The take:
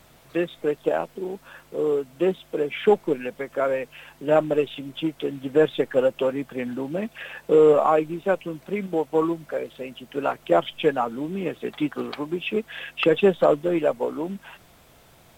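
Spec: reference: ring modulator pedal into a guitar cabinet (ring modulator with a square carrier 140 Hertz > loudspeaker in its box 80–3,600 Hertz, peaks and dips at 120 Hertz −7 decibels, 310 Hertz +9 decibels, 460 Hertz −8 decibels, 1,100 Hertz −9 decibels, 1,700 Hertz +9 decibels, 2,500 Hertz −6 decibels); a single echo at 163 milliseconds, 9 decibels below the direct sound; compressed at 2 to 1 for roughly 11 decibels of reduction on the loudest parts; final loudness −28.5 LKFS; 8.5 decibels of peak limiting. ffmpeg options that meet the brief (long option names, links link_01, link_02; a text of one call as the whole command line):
ffmpeg -i in.wav -af "acompressor=threshold=-33dB:ratio=2,alimiter=level_in=1.5dB:limit=-24dB:level=0:latency=1,volume=-1.5dB,aecho=1:1:163:0.355,aeval=exprs='val(0)*sgn(sin(2*PI*140*n/s))':channel_layout=same,highpass=80,equalizer=frequency=120:width_type=q:width=4:gain=-7,equalizer=frequency=310:width_type=q:width=4:gain=9,equalizer=frequency=460:width_type=q:width=4:gain=-8,equalizer=frequency=1100:width_type=q:width=4:gain=-9,equalizer=frequency=1700:width_type=q:width=4:gain=9,equalizer=frequency=2500:width_type=q:width=4:gain=-6,lowpass=frequency=3600:width=0.5412,lowpass=frequency=3600:width=1.3066,volume=6dB" out.wav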